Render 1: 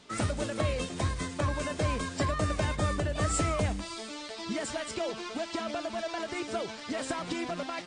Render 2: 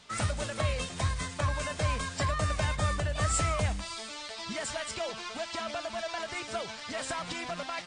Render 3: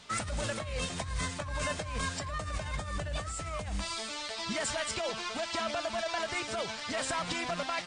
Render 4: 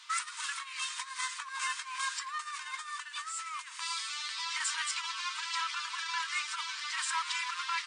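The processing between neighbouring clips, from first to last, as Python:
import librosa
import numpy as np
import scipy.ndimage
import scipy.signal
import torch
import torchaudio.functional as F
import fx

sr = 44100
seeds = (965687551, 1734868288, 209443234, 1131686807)

y1 = fx.peak_eq(x, sr, hz=320.0, db=-12.0, octaves=1.3)
y1 = F.gain(torch.from_numpy(y1), 2.0).numpy()
y2 = fx.over_compress(y1, sr, threshold_db=-34.0, ratio=-1.0)
y3 = fx.brickwall_highpass(y2, sr, low_hz=910.0)
y3 = F.gain(torch.from_numpy(y3), 1.5).numpy()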